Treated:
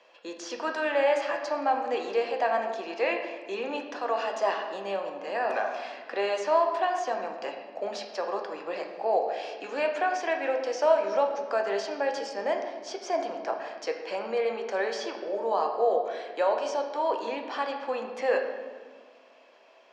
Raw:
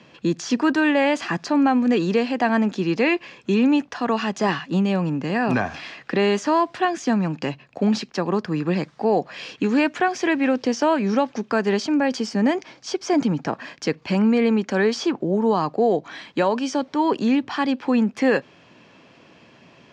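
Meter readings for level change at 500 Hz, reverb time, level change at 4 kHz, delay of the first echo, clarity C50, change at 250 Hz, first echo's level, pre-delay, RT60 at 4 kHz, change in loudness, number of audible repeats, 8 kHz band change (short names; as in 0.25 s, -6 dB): -3.5 dB, 1.6 s, -8.0 dB, none, 6.0 dB, -21.5 dB, none, 6 ms, 1.0 s, -7.5 dB, none, n/a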